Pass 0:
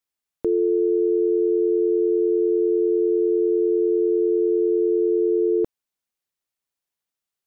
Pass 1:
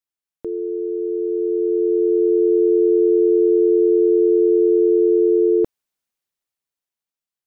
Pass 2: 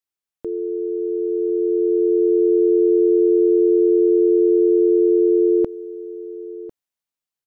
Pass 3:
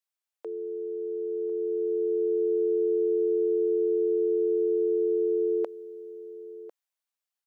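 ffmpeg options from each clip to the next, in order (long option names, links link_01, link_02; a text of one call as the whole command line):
ffmpeg -i in.wav -af "dynaudnorm=framelen=320:gausssize=11:maxgain=12dB,volume=-5.5dB" out.wav
ffmpeg -i in.wav -af "aecho=1:1:1049:0.141" out.wav
ffmpeg -i in.wav -af "highpass=frequency=500:width=0.5412,highpass=frequency=500:width=1.3066,volume=-1.5dB" out.wav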